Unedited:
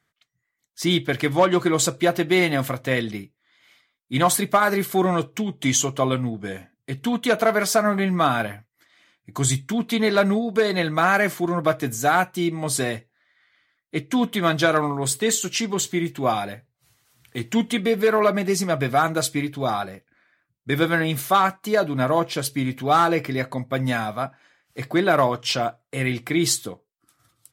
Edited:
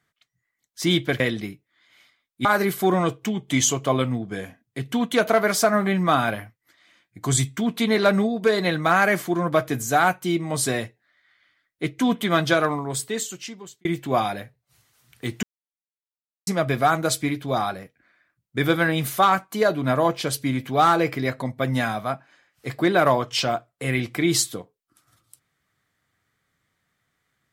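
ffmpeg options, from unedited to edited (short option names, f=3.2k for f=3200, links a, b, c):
-filter_complex "[0:a]asplit=6[a][b][c][d][e][f];[a]atrim=end=1.202[g];[b]atrim=start=2.908:end=4.162[h];[c]atrim=start=4.568:end=15.97,asetpts=PTS-STARTPTS,afade=t=out:st=9.962:d=1.44[i];[d]atrim=start=15.97:end=17.55,asetpts=PTS-STARTPTS,afade=t=in:d=0.004:c=hsin,afade=t=out:st=1.576:d=0.004:c=hsin[j];[e]atrim=start=17.55:end=18.59,asetpts=PTS-STARTPTS,volume=0[k];[f]atrim=start=18.59,asetpts=PTS-STARTPTS,afade=t=in:d=0.004:c=hsin[l];[g][h]acrossfade=d=0.004:c1=hsin:c2=hsin[m];[i][j][k][l]concat=n=4:v=0:a=1[n];[m][n]acrossfade=d=0.004:c1=hsin:c2=hsin"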